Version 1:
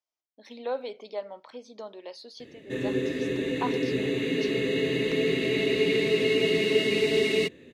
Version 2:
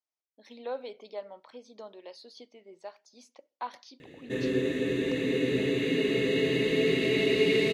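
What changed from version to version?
speech −4.5 dB
background: entry +1.60 s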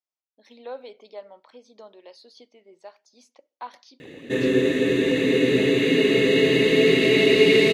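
background +9.0 dB
master: add low-shelf EQ 110 Hz −8 dB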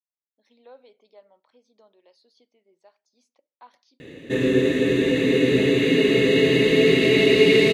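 speech −12.0 dB
master: add low-shelf EQ 110 Hz +8 dB

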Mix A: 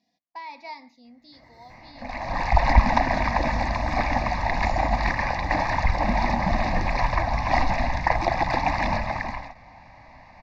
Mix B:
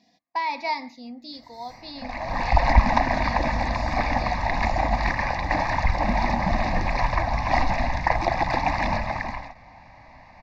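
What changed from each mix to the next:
speech +11.5 dB
reverb: off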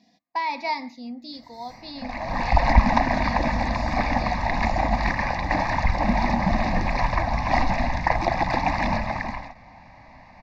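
master: add parametric band 210 Hz +4.5 dB 0.81 octaves

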